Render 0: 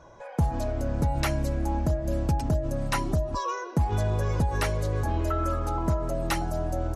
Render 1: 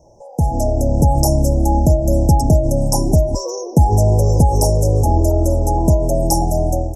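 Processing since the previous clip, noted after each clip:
Chebyshev band-stop filter 870–5,300 Hz, order 5
high-shelf EQ 4,800 Hz +6 dB
automatic gain control gain up to 10.5 dB
level +3 dB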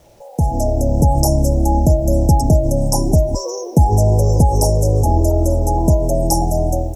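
bit reduction 9 bits

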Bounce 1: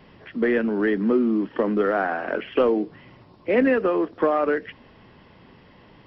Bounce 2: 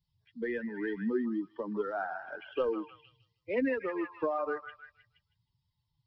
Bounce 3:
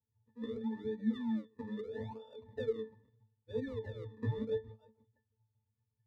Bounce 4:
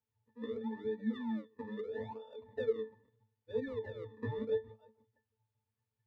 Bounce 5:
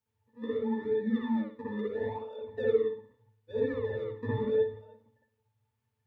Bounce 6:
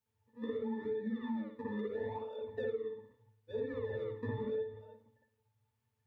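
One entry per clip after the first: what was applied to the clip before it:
spectral dynamics exaggerated over time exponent 2; echo through a band-pass that steps 157 ms, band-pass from 1,200 Hz, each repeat 0.7 octaves, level −5 dB; level −8 dB
sample-and-hold swept by an LFO 41×, swing 100% 0.77 Hz; resonances in every octave A, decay 0.18 s; level +4.5 dB
bass and treble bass −9 dB, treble −10 dB; level +3 dB
convolution reverb, pre-delay 57 ms, DRR −4 dB; level +1.5 dB
downward compressor 6 to 1, threshold −33 dBFS, peak gain reduction 13 dB; level −1.5 dB

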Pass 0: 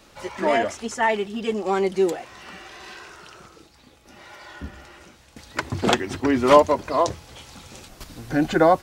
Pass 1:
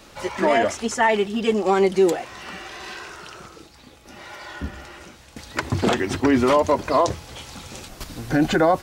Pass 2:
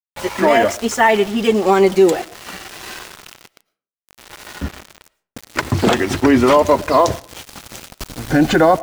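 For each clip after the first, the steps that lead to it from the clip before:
brickwall limiter −14 dBFS, peak gain reduction 11.5 dB; level +5 dB
centre clipping without the shift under −33 dBFS; convolution reverb RT60 0.45 s, pre-delay 70 ms, DRR 21 dB; level +5.5 dB

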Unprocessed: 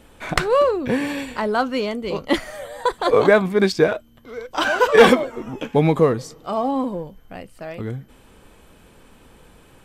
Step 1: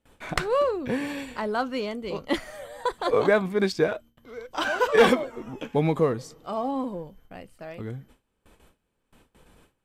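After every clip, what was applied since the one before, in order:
noise gate with hold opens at −38 dBFS
level −6.5 dB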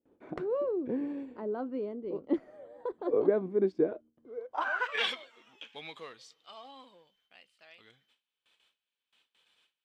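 band-pass filter sweep 340 Hz → 3,400 Hz, 0:04.26–0:05.06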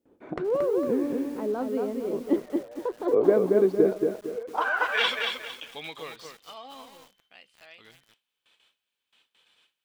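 feedback echo at a low word length 228 ms, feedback 35%, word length 9 bits, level −4 dB
level +5.5 dB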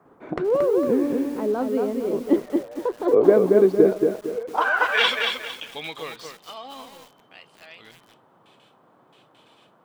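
noise in a band 120–1,200 Hz −63 dBFS
level +5 dB

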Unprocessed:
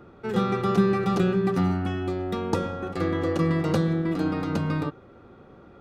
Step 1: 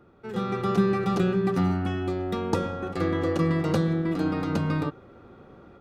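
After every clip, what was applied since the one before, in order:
automatic gain control gain up to 8 dB
level −7.5 dB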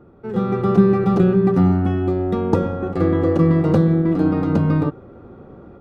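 tilt shelving filter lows +8 dB, about 1,500 Hz
level +1.5 dB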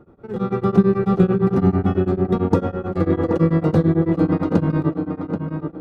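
tape delay 779 ms, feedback 31%, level −4.5 dB, low-pass 2,200 Hz
tremolo along a rectified sine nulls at 9 Hz
level +1 dB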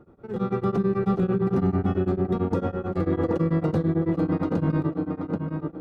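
brickwall limiter −11 dBFS, peak gain reduction 9.5 dB
level −3.5 dB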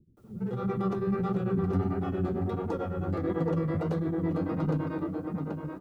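bit-depth reduction 12 bits, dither triangular
multiband delay without the direct sound lows, highs 170 ms, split 260 Hz
flanger 1.5 Hz, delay 4.7 ms, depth 9 ms, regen +58%

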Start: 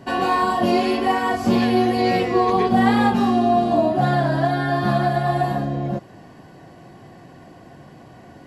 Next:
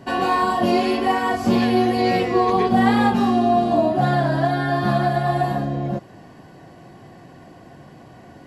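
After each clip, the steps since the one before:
no processing that can be heard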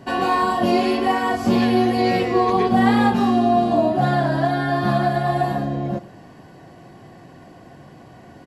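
slap from a distant wall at 19 metres, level −18 dB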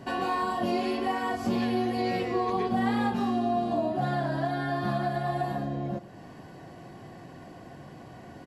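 downward compressor 1.5 to 1, threshold −37 dBFS, peak gain reduction 9 dB
level −2 dB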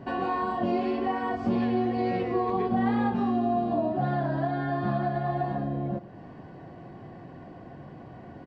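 head-to-tape spacing loss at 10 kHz 28 dB
level +2.5 dB

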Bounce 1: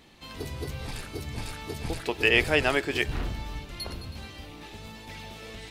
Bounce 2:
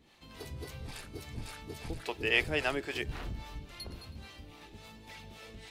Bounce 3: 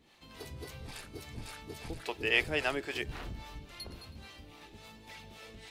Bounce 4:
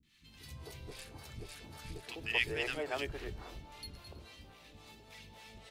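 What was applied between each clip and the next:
two-band tremolo in antiphase 3.6 Hz, depth 70%, crossover 450 Hz; level −4.5 dB
low-shelf EQ 210 Hz −3.5 dB
three-band delay without the direct sound lows, highs, mids 30/260 ms, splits 260/1,500 Hz; level −2.5 dB

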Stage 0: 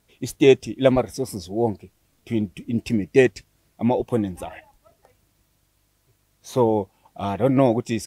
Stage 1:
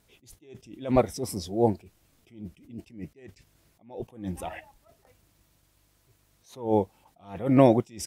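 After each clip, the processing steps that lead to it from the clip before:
level that may rise only so fast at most 140 dB per second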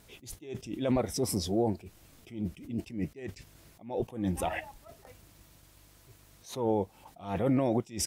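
brickwall limiter −16 dBFS, peak gain reduction 10.5 dB
downward compressor 2.5 to 1, threshold −36 dBFS, peak gain reduction 10.5 dB
level +7.5 dB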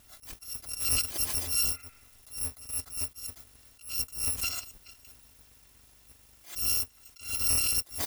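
samples in bit-reversed order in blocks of 256 samples
healed spectral selection 0:01.63–0:02.20, 1,200–2,700 Hz both

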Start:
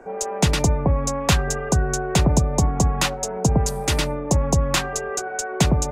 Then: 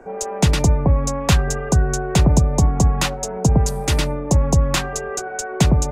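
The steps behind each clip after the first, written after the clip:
low-shelf EQ 210 Hz +5 dB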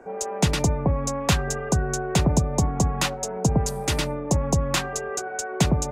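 low-shelf EQ 67 Hz −11.5 dB
level −3 dB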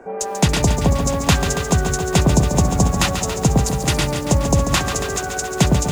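feedback echo at a low word length 140 ms, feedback 80%, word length 7 bits, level −8 dB
level +5 dB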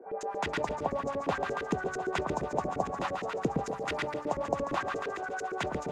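auto-filter band-pass saw up 8.7 Hz 320–2,000 Hz
level −3.5 dB

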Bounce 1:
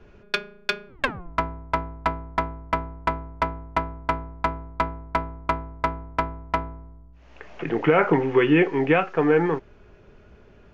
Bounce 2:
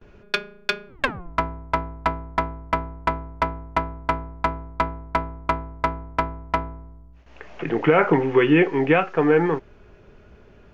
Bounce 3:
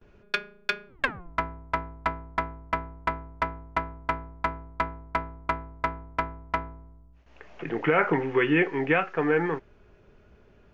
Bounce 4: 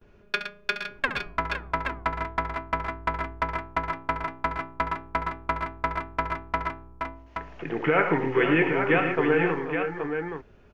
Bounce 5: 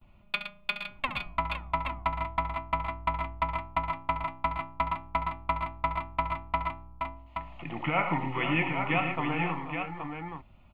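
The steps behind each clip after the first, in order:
noise gate with hold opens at −43 dBFS; level +1.5 dB
dynamic equaliser 1,800 Hz, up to +6 dB, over −36 dBFS, Q 1.3; level −7 dB
multi-tap delay 69/115/482/512/824 ms −11.5/−10/−13/−10/−6.5 dB
phaser with its sweep stopped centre 1,600 Hz, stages 6

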